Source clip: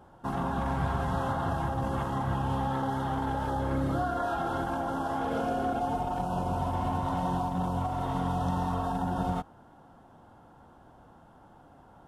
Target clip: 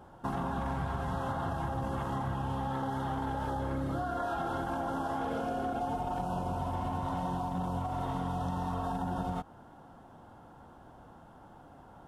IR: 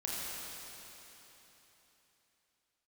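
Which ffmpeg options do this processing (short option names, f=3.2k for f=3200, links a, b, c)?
-af "acompressor=threshold=-32dB:ratio=6,volume=1.5dB"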